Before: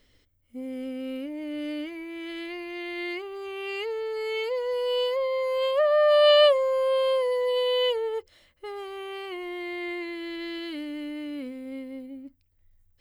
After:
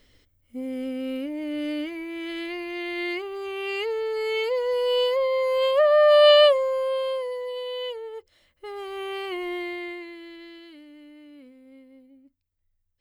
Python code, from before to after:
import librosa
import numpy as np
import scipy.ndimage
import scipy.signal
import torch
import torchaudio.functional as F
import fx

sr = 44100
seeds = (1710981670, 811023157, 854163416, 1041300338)

y = fx.gain(x, sr, db=fx.line((6.25, 3.5), (7.57, -7.5), (8.12, -7.5), (9.03, 4.5), (9.55, 4.5), (10.04, -5.0), (10.81, -13.0)))